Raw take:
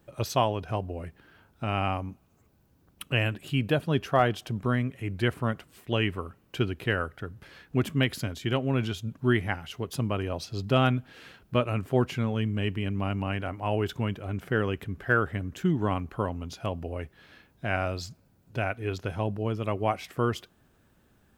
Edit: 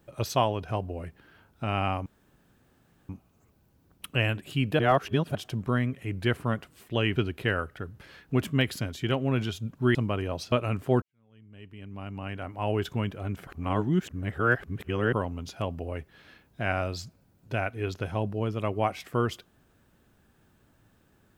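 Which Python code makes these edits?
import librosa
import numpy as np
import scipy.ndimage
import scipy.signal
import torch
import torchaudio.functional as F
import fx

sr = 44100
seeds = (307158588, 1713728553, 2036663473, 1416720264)

y = fx.edit(x, sr, fx.insert_room_tone(at_s=2.06, length_s=1.03),
    fx.reverse_span(start_s=3.76, length_s=0.56),
    fx.cut(start_s=6.13, length_s=0.45),
    fx.cut(start_s=9.37, length_s=0.59),
    fx.cut(start_s=10.53, length_s=1.03),
    fx.fade_in_span(start_s=12.06, length_s=1.74, curve='qua'),
    fx.reverse_span(start_s=14.51, length_s=1.66), tone=tone)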